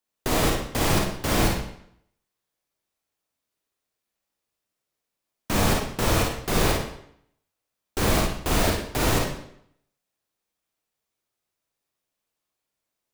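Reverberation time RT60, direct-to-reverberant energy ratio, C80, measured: 0.70 s, -1.5 dB, 7.0 dB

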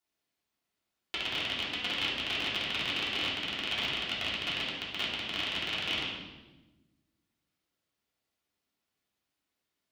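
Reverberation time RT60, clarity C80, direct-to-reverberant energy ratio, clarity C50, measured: 1.2 s, 4.0 dB, -8.0 dB, 1.0 dB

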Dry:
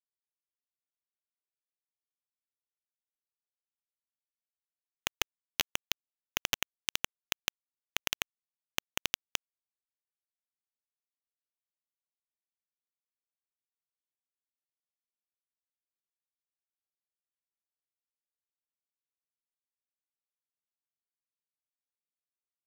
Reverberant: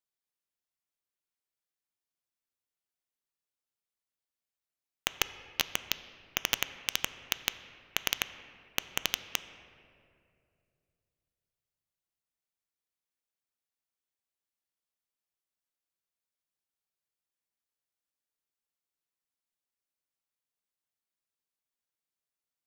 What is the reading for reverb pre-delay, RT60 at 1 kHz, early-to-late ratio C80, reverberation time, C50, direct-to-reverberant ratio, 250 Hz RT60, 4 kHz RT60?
4 ms, 2.1 s, 13.5 dB, 2.5 s, 12.5 dB, 11.5 dB, 2.9 s, 1.5 s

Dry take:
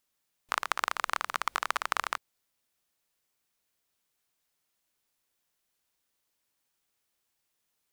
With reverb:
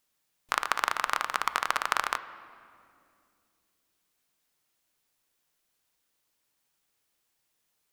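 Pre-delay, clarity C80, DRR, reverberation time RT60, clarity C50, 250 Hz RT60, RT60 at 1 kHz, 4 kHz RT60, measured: 6 ms, 15.0 dB, 11.5 dB, 2.5 s, 14.0 dB, 3.6 s, 2.2 s, 1.7 s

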